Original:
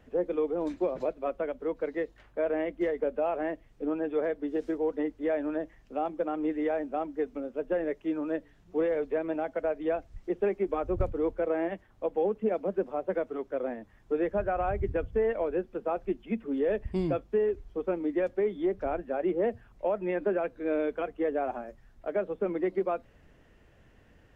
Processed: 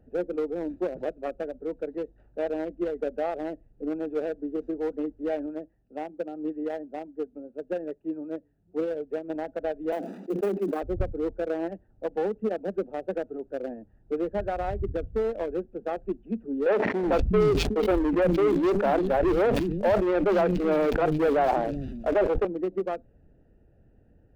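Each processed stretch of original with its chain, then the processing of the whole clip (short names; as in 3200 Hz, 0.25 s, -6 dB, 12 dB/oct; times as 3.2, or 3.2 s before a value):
5.46–9.3 HPF 57 Hz + upward expander, over -38 dBFS
9.92–10.82 block floating point 5-bit + steep high-pass 180 Hz 96 dB/oct + sustainer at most 48 dB/s
16.66–22.45 sample leveller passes 3 + three bands offset in time mids, lows, highs 0.37/0.46 s, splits 250/3000 Hz + sustainer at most 29 dB/s
whole clip: Wiener smoothing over 41 samples; bell 820 Hz +3 dB 0.47 oct; gain +1.5 dB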